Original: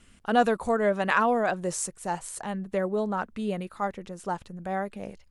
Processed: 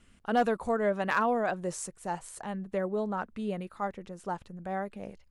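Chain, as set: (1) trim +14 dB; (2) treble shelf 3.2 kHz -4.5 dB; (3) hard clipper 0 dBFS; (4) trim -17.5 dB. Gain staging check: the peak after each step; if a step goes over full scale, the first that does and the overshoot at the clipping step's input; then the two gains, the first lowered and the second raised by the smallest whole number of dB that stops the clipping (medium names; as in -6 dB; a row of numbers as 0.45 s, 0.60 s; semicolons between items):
+5.5 dBFS, +4.5 dBFS, 0.0 dBFS, -17.5 dBFS; step 1, 4.5 dB; step 1 +9 dB, step 4 -12.5 dB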